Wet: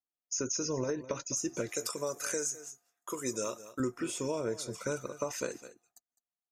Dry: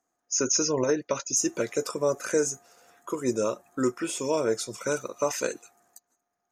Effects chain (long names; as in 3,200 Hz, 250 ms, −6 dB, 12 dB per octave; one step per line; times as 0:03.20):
noise gate −50 dBFS, range −23 dB
0:01.69–0:03.80: spectral tilt +3 dB per octave
single-tap delay 207 ms −18 dB
downward compressor, threshold −26 dBFS, peak gain reduction 7.5 dB
low-shelf EQ 150 Hz +11.5 dB
level −5 dB